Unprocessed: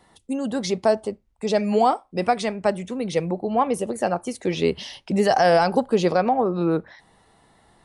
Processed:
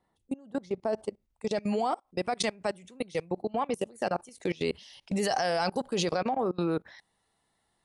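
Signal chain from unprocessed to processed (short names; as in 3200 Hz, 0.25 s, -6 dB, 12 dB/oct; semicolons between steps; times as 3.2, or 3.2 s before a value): high shelf 2100 Hz -9 dB, from 0.93 s +3.5 dB, from 2.39 s +9 dB; level quantiser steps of 24 dB; gain -3.5 dB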